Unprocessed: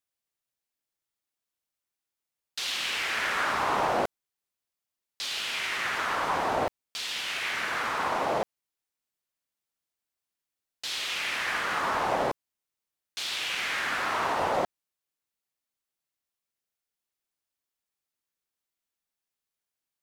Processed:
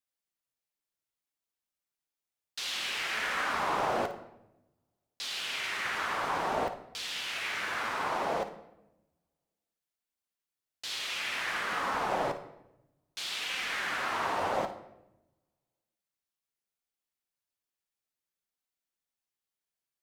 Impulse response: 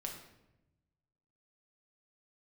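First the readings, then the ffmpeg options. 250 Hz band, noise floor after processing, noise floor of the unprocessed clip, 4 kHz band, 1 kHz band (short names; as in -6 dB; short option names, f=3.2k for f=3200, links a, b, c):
-3.5 dB, under -85 dBFS, under -85 dBFS, -3.5 dB, -3.5 dB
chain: -filter_complex "[0:a]flanger=delay=3.8:depth=6.3:regen=-49:speed=0.59:shape=sinusoidal,asplit=2[a][b];[1:a]atrim=start_sample=2205,adelay=55[c];[b][c]afir=irnorm=-1:irlink=0,volume=-8.5dB[d];[a][d]amix=inputs=2:normalize=0"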